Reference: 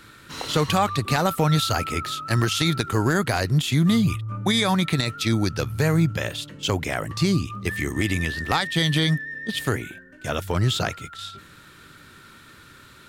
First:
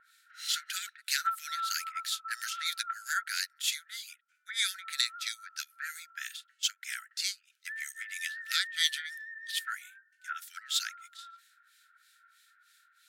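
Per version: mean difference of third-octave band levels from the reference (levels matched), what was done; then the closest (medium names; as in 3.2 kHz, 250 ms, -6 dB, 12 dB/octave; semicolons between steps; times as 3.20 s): 17.5 dB: brick-wall FIR high-pass 1.3 kHz; harmonic tremolo 3.1 Hz, depth 100%, crossover 1.8 kHz; peaking EQ 2.7 kHz -7 dB 0.95 oct; upward expansion 1.5:1, over -55 dBFS; trim +5.5 dB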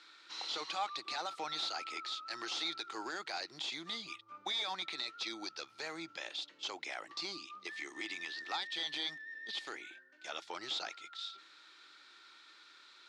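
9.5 dB: differentiator; in parallel at -2.5 dB: compression, threshold -42 dBFS, peak gain reduction 16 dB; on the sum: hard clipper -27 dBFS, distortion -11 dB; cabinet simulation 300–4600 Hz, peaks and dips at 330 Hz +9 dB, 810 Hz +7 dB, 1.7 kHz -4 dB, 2.9 kHz -5 dB; trim -2 dB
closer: second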